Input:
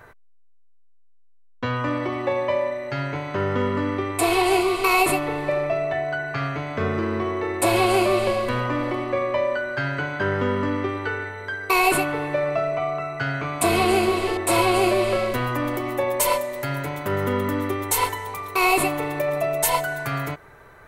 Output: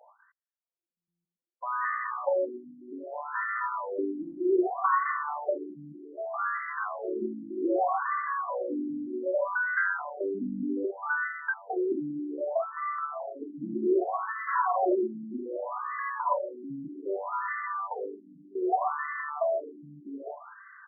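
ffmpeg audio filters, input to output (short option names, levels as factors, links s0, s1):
-af "highshelf=f=2500:t=q:w=3:g=-9.5,aecho=1:1:46.65|186.6:0.355|0.251,afftfilt=real='re*between(b*sr/1024,230*pow(1500/230,0.5+0.5*sin(2*PI*0.64*pts/sr))/1.41,230*pow(1500/230,0.5+0.5*sin(2*PI*0.64*pts/sr))*1.41)':imag='im*between(b*sr/1024,230*pow(1500/230,0.5+0.5*sin(2*PI*0.64*pts/sr))/1.41,230*pow(1500/230,0.5+0.5*sin(2*PI*0.64*pts/sr))*1.41)':win_size=1024:overlap=0.75,volume=0.668"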